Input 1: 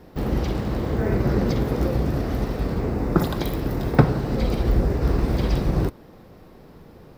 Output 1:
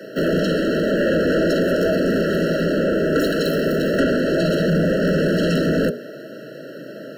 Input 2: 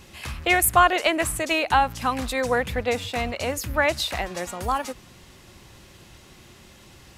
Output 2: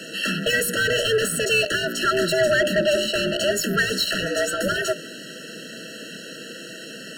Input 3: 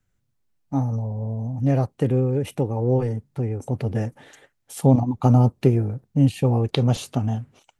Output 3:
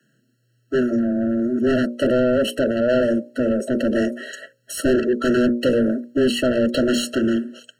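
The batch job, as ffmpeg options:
-filter_complex "[0:a]bandreject=f=60:t=h:w=6,bandreject=f=120:t=h:w=6,bandreject=f=180:t=h:w=6,bandreject=f=240:t=h:w=6,bandreject=f=300:t=h:w=6,bandreject=f=360:t=h:w=6,bandreject=f=420:t=h:w=6,bandreject=f=480:t=h:w=6,afreqshift=120,asplit=2[a][b];[b]highpass=f=720:p=1,volume=32dB,asoftclip=type=tanh:threshold=-2dB[c];[a][c]amix=inputs=2:normalize=0,lowpass=f=4.5k:p=1,volume=-6dB,afftfilt=real='re*eq(mod(floor(b*sr/1024/650),2),0)':imag='im*eq(mod(floor(b*sr/1024/650),2),0)':win_size=1024:overlap=0.75,volume=-7dB"

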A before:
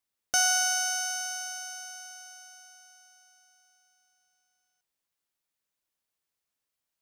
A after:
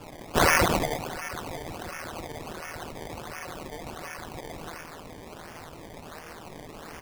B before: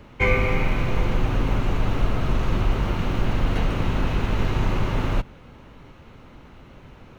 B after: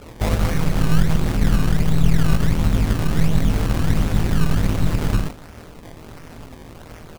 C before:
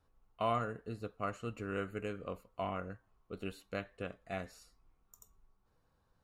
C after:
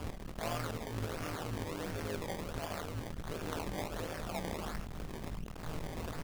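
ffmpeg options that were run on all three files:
-filter_complex "[0:a]aeval=exprs='val(0)+0.5*0.0891*sgn(val(0))':c=same,lowshelf=f=250:g=3,aecho=1:1:27|77:0.422|0.15,agate=range=-17dB:threshold=-19dB:ratio=16:detection=peak,acrossover=split=180|5500[a][b][c];[b]asoftclip=type=tanh:threshold=-22.5dB[d];[a][d][c]amix=inputs=3:normalize=0,flanger=delay=16.5:depth=2.8:speed=1.6,asplit=2[e][f];[f]acompressor=threshold=-28dB:ratio=6,volume=1dB[g];[e][g]amix=inputs=2:normalize=0,aresample=22050,aresample=44100,equalizer=f=160:t=o:w=0.67:g=-5,equalizer=f=1k:t=o:w=0.67:g=-5,equalizer=f=4k:t=o:w=0.67:g=7,tremolo=f=160:d=0.824,acrusher=samples=22:mix=1:aa=0.000001:lfo=1:lforange=22:lforate=1.4,volume=2.5dB"

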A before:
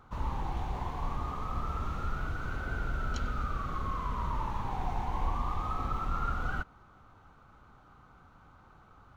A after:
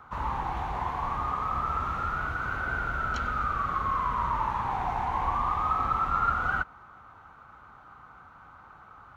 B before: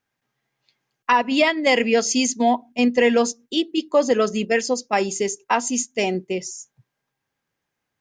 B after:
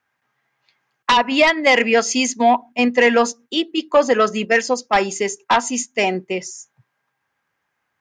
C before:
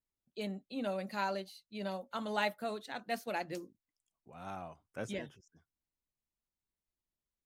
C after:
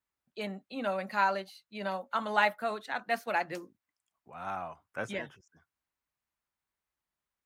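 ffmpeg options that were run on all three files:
-filter_complex "[0:a]acrossover=split=820|2100[a][b][c];[a]highpass=43[d];[b]aeval=exprs='0.251*sin(PI/2*2.51*val(0)/0.251)':c=same[e];[d][e][c]amix=inputs=3:normalize=0"

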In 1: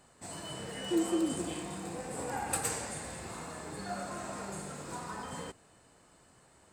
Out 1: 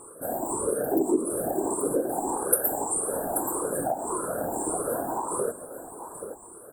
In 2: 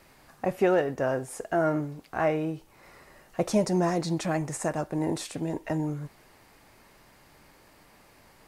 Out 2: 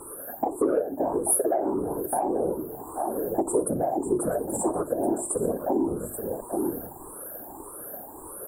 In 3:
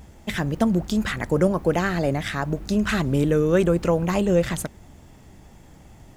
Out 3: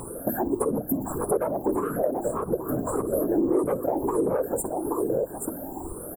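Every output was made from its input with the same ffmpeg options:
-af "afftfilt=real='re*pow(10,22/40*sin(2*PI*(0.67*log(max(b,1)*sr/1024/100)/log(2)-(1.7)*(pts-256)/sr)))':imag='im*pow(10,22/40*sin(2*PI*(0.67*log(max(b,1)*sr/1024/100)/log(2)-(1.7)*(pts-256)/sr)))':win_size=1024:overlap=0.75,afftfilt=real='re*(1-between(b*sr/4096,1700,7100))':imag='im*(1-between(b*sr/4096,1700,7100))':win_size=4096:overlap=0.75,aecho=1:1:60|831:0.1|0.188,aeval=exprs='1*sin(PI/2*2.82*val(0)/1)':c=same,equalizer=f=88:t=o:w=2.3:g=-10,afftfilt=real='hypot(re,im)*cos(2*PI*random(0))':imag='hypot(re,im)*sin(2*PI*random(1))':win_size=512:overlap=0.75,bandreject=f=50:t=h:w=6,bandreject=f=100:t=h:w=6,bandreject=f=150:t=h:w=6,bandreject=f=200:t=h:w=6,bandreject=f=250:t=h:w=6,bandreject=f=300:t=h:w=6,bandreject=f=350:t=h:w=6,acompressor=threshold=-30dB:ratio=6,firequalizer=gain_entry='entry(190,0);entry(300,10);entry(1700,-7);entry(4400,-21);entry(10000,15)':delay=0.05:min_phase=1"

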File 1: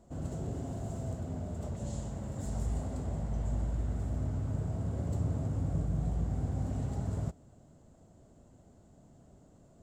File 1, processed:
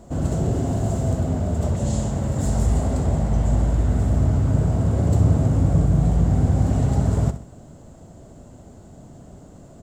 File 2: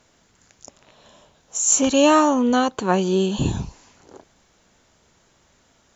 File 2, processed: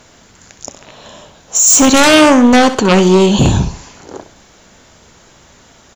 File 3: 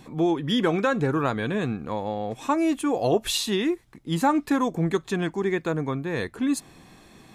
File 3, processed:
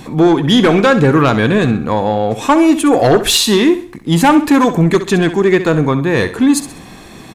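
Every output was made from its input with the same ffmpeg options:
-af "aeval=exprs='0.596*sin(PI/2*3.55*val(0)/0.596)':c=same,aecho=1:1:65|130|195|260:0.251|0.0929|0.0344|0.0127"

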